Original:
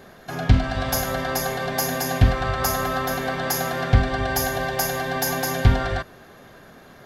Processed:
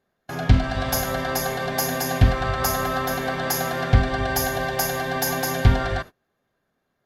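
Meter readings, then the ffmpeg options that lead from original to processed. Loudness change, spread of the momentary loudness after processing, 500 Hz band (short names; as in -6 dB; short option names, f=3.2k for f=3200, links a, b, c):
0.0 dB, 5 LU, 0.0 dB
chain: -af "agate=range=-28dB:threshold=-34dB:ratio=16:detection=peak"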